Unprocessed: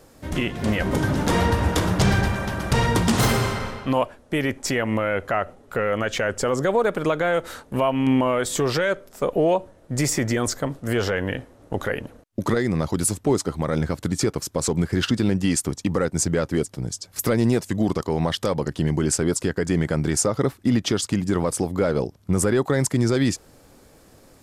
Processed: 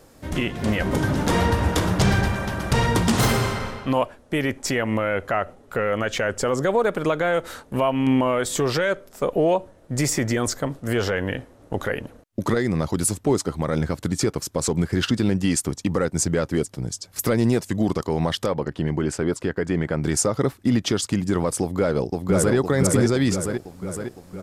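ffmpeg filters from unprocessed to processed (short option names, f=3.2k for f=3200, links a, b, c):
-filter_complex "[0:a]asplit=3[a][b][c];[a]afade=t=out:st=18.45:d=0.02[d];[b]bass=f=250:g=-3,treble=f=4k:g=-12,afade=t=in:st=18.45:d=0.02,afade=t=out:st=20.02:d=0.02[e];[c]afade=t=in:st=20.02:d=0.02[f];[d][e][f]amix=inputs=3:normalize=0,asplit=2[g][h];[h]afade=t=in:st=21.61:d=0.01,afade=t=out:st=22.55:d=0.01,aecho=0:1:510|1020|1530|2040|2550|3060|3570|4080|4590:0.841395|0.504837|0.302902|0.181741|0.109045|0.0654269|0.0392561|0.0235537|0.0141322[i];[g][i]amix=inputs=2:normalize=0"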